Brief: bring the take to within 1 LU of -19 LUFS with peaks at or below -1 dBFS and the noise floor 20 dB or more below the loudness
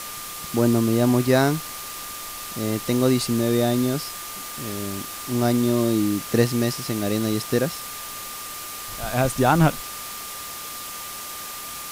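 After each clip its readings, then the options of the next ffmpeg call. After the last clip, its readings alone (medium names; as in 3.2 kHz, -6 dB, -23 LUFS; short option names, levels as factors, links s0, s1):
steady tone 1.2 kHz; tone level -39 dBFS; noise floor -35 dBFS; noise floor target -44 dBFS; loudness -24.0 LUFS; peak level -5.5 dBFS; loudness target -19.0 LUFS
-> -af "bandreject=f=1200:w=30"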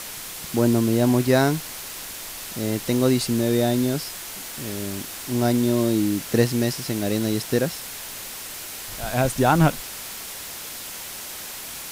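steady tone not found; noise floor -36 dBFS; noise floor target -44 dBFS
-> -af "afftdn=nr=8:nf=-36"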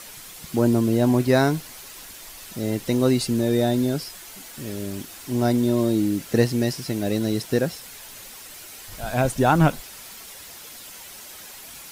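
noise floor -42 dBFS; noise floor target -43 dBFS
-> -af "afftdn=nr=6:nf=-42"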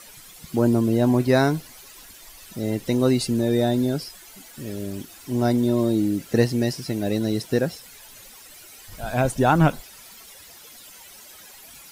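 noise floor -46 dBFS; loudness -22.5 LUFS; peak level -6.0 dBFS; loudness target -19.0 LUFS
-> -af "volume=1.5"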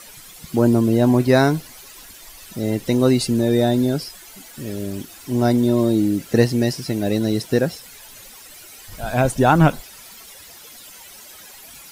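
loudness -19.0 LUFS; peak level -2.5 dBFS; noise floor -42 dBFS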